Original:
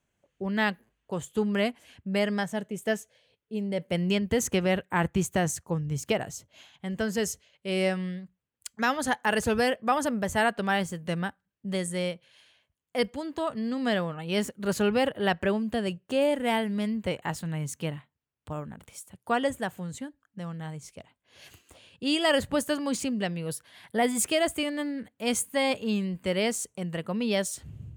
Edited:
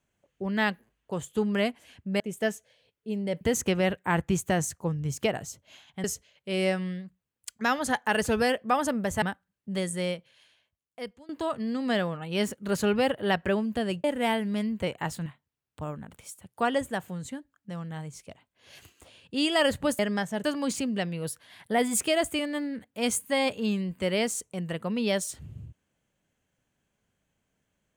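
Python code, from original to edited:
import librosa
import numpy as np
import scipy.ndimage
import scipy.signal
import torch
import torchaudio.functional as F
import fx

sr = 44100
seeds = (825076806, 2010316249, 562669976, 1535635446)

y = fx.edit(x, sr, fx.move(start_s=2.2, length_s=0.45, to_s=22.68),
    fx.cut(start_s=3.86, length_s=0.41),
    fx.cut(start_s=6.9, length_s=0.32),
    fx.cut(start_s=10.4, length_s=0.79),
    fx.fade_out_to(start_s=12.08, length_s=1.18, floor_db=-21.5),
    fx.cut(start_s=16.01, length_s=0.27),
    fx.cut(start_s=17.5, length_s=0.45), tone=tone)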